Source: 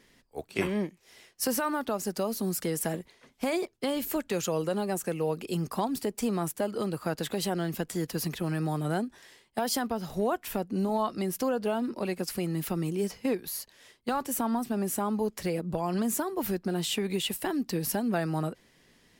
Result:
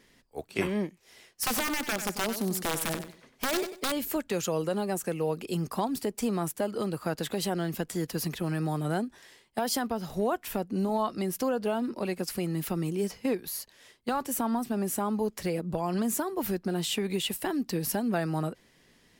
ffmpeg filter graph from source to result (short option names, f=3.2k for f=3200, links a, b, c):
-filter_complex "[0:a]asettb=1/sr,asplit=3[a][b][c];[a]atrim=end=1.434[d];[b]atrim=start=1.43:end=3.92,asetpts=PTS-STARTPTS,afade=t=in:d=0.004:c=qsin,afade=t=out:st=2.486:d=0.004:c=qsin,aeval=exprs='(mod(13.3*val(0)+1,2)-1)/13.3':c=same,aecho=1:1:95|190|285:0.316|0.0759|0.0182,atrim=end_sample=109809[e];[c]atrim=start=3.916[f];[d][e]acrossfade=d=0.004:c1=hsin:c2=qsin[g];[g][f]acrossfade=d=0.004:c1=qsin:c2=hsin"